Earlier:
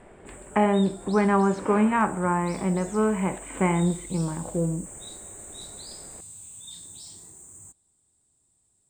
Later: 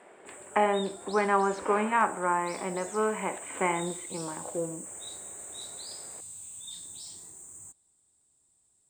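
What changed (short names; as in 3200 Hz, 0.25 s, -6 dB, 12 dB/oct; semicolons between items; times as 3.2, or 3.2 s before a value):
speech: add HPF 300 Hz 12 dB/oct; master: add low shelf 310 Hz -7.5 dB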